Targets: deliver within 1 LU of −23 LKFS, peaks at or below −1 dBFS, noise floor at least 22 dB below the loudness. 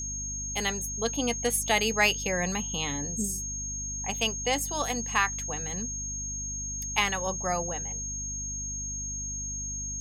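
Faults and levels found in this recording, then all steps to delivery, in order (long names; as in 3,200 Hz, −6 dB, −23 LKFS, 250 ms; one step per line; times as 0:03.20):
mains hum 50 Hz; hum harmonics up to 250 Hz; level of the hum −37 dBFS; interfering tone 6,500 Hz; level of the tone −33 dBFS; integrated loudness −29.0 LKFS; sample peak −9.0 dBFS; target loudness −23.0 LKFS
→ mains-hum notches 50/100/150/200/250 Hz
notch filter 6,500 Hz, Q 30
level +6 dB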